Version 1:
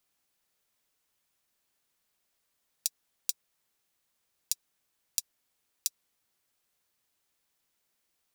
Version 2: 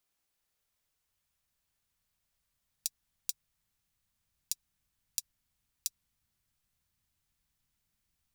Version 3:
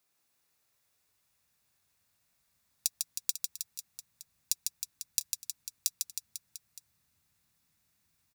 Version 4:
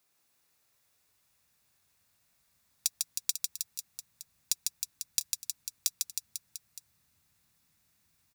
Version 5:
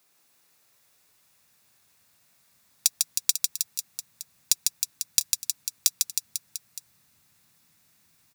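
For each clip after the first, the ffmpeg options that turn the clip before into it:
-af "asubboost=boost=11:cutoff=130,volume=0.631"
-filter_complex "[0:a]highpass=82,bandreject=f=3100:w=10,asplit=2[s0][s1];[s1]aecho=0:1:150|315|496.5|696.2|915.8:0.631|0.398|0.251|0.158|0.1[s2];[s0][s2]amix=inputs=2:normalize=0,volume=1.68"
-af "asoftclip=type=hard:threshold=0.224,volume=1.41"
-af "highpass=110,volume=2.51"

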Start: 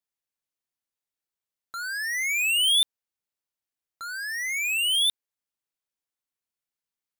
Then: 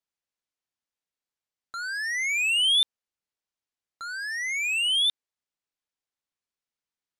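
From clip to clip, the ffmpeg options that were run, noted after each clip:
-af "lowpass=7400"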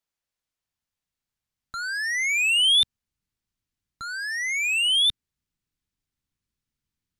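-af "asubboost=boost=11.5:cutoff=180,volume=1.41"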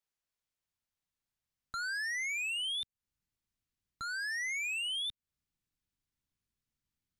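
-af "acompressor=threshold=0.0282:ratio=10,volume=0.596"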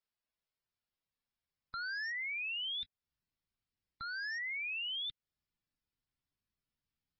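-af "volume=0.75" -ar 24000 -c:a libmp3lame -b:a 16k

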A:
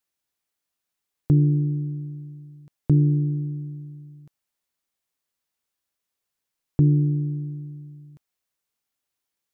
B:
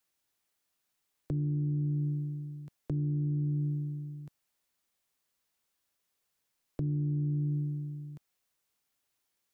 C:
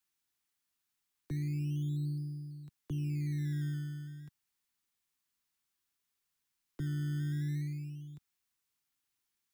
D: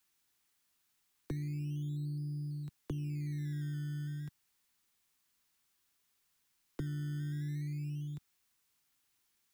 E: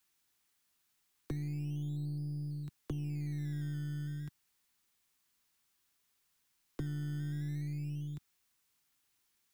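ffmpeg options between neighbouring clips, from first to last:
-filter_complex "[0:a]acrossover=split=160|480[s0][s1][s2];[s0]acompressor=threshold=0.0224:ratio=4[s3];[s1]acompressor=threshold=0.0224:ratio=4[s4];[s2]acompressor=threshold=0.00126:ratio=4[s5];[s3][s4][s5]amix=inputs=3:normalize=0,alimiter=level_in=1.58:limit=0.0631:level=0:latency=1:release=27,volume=0.631,volume=1.33"
-filter_complex "[0:a]equalizer=f=570:w=2.1:g=-12,acrossover=split=130|250[s0][s1][s2];[s1]acrusher=samples=18:mix=1:aa=0.000001:lfo=1:lforange=18:lforate=0.32[s3];[s0][s3][s2]amix=inputs=3:normalize=0,volume=0.668"
-af "acompressor=threshold=0.00708:ratio=10,volume=2.24"
-af "aeval=exprs='0.0447*(cos(1*acos(clip(val(0)/0.0447,-1,1)))-cos(1*PI/2))+0.002*(cos(6*acos(clip(val(0)/0.0447,-1,1)))-cos(6*PI/2))':c=same"

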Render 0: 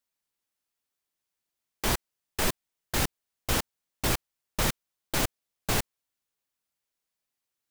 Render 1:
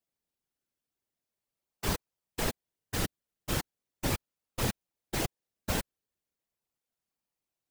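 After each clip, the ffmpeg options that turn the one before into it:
-filter_complex "[0:a]asplit=2[s0][s1];[s1]acrusher=samples=30:mix=1:aa=0.000001:lfo=1:lforange=18:lforate=0.39,volume=0.473[s2];[s0][s2]amix=inputs=2:normalize=0,afftfilt=real='hypot(re,im)*cos(2*PI*random(0))':imag='hypot(re,im)*sin(2*PI*random(1))':win_size=512:overlap=0.75"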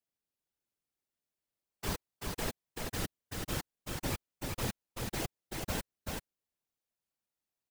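-af "aecho=1:1:384:0.668,volume=0.562"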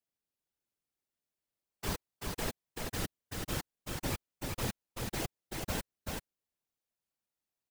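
-af anull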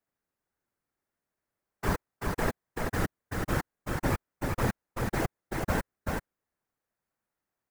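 -af "highshelf=f=2300:t=q:w=1.5:g=-9,volume=2.51"

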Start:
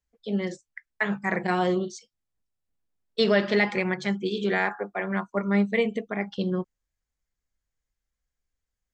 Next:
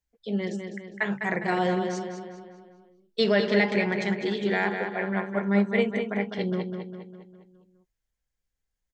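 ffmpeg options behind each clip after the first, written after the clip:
-filter_complex "[0:a]equalizer=f=1200:t=o:w=0.22:g=-6,asplit=2[s0][s1];[s1]adelay=203,lowpass=f=4900:p=1,volume=0.501,asplit=2[s2][s3];[s3]adelay=203,lowpass=f=4900:p=1,volume=0.52,asplit=2[s4][s5];[s5]adelay=203,lowpass=f=4900:p=1,volume=0.52,asplit=2[s6][s7];[s7]adelay=203,lowpass=f=4900:p=1,volume=0.52,asplit=2[s8][s9];[s9]adelay=203,lowpass=f=4900:p=1,volume=0.52,asplit=2[s10][s11];[s11]adelay=203,lowpass=f=4900:p=1,volume=0.52[s12];[s2][s4][s6][s8][s10][s12]amix=inputs=6:normalize=0[s13];[s0][s13]amix=inputs=2:normalize=0,volume=0.891"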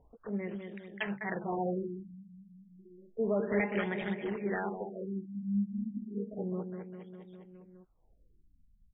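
-af "acompressor=mode=upward:threshold=0.0224:ratio=2.5,acrusher=samples=8:mix=1:aa=0.000001:lfo=1:lforange=8:lforate=4,afftfilt=real='re*lt(b*sr/1024,240*pow(3800/240,0.5+0.5*sin(2*PI*0.31*pts/sr)))':imag='im*lt(b*sr/1024,240*pow(3800/240,0.5+0.5*sin(2*PI*0.31*pts/sr)))':win_size=1024:overlap=0.75,volume=0.422"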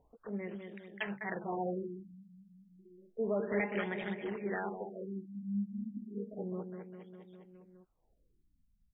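-af "lowshelf=f=140:g=-6.5,volume=0.794"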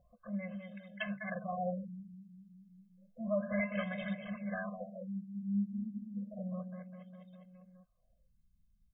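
-af "afftfilt=real='re*eq(mod(floor(b*sr/1024/250),2),0)':imag='im*eq(mod(floor(b*sr/1024/250),2),0)':win_size=1024:overlap=0.75,volume=1.26"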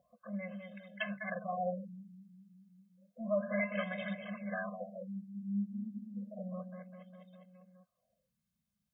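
-af "highpass=210,volume=1.19"

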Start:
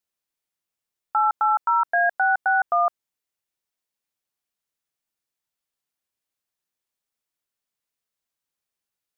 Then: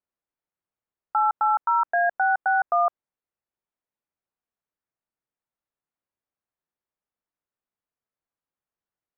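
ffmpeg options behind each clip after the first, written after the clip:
-af "lowpass=1500"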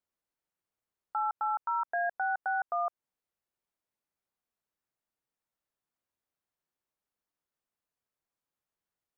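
-af "alimiter=limit=0.0631:level=0:latency=1:release=165"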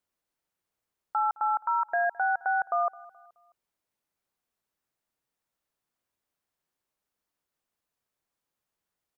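-af "aecho=1:1:213|426|639:0.0794|0.0334|0.014,volume=1.68"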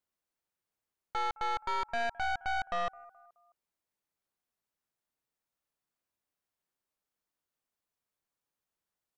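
-af "aeval=exprs='(tanh(28.2*val(0)+0.75)-tanh(0.75))/28.2':c=same"

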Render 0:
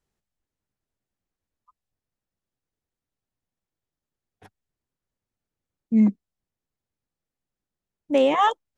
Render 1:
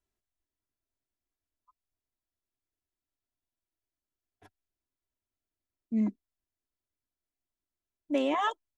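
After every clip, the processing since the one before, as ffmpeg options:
-af "aecho=1:1:3:0.61,volume=0.376"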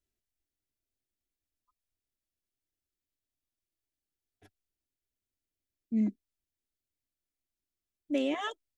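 -af "equalizer=f=1000:t=o:w=0.86:g=-13.5"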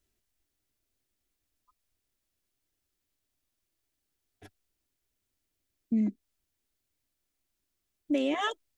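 -af "acompressor=threshold=0.02:ratio=4,volume=2.66"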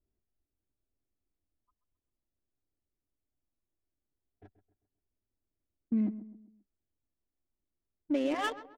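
-filter_complex "[0:a]asplit=2[s0][s1];[s1]adelay=132,lowpass=f=4700:p=1,volume=0.211,asplit=2[s2][s3];[s3]adelay=132,lowpass=f=4700:p=1,volume=0.42,asplit=2[s4][s5];[s5]adelay=132,lowpass=f=4700:p=1,volume=0.42,asplit=2[s6][s7];[s7]adelay=132,lowpass=f=4700:p=1,volume=0.42[s8];[s0][s2][s4][s6][s8]amix=inputs=5:normalize=0,adynamicsmooth=sensitivity=6:basefreq=830,volume=0.794"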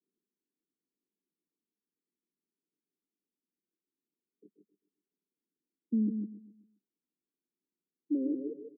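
-af "asuperpass=centerf=280:order=20:qfactor=0.81,aecho=1:1:152:0.473"

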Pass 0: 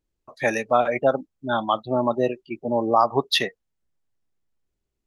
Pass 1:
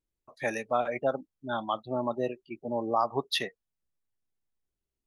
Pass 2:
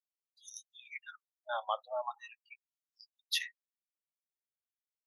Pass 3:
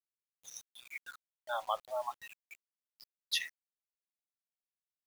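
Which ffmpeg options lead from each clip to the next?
-af "equalizer=f=9800:t=o:w=0.25:g=5,volume=0.376"
-af "afftdn=nr=18:nf=-55,aexciter=amount=1.8:drive=4.9:freq=5600,afftfilt=real='re*gte(b*sr/1024,490*pow(3000/490,0.5+0.5*sin(2*PI*0.42*pts/sr)))':imag='im*gte(b*sr/1024,490*pow(3000/490,0.5+0.5*sin(2*PI*0.42*pts/sr)))':win_size=1024:overlap=0.75,volume=0.668"
-af "acrusher=bits=8:mix=0:aa=0.000001"

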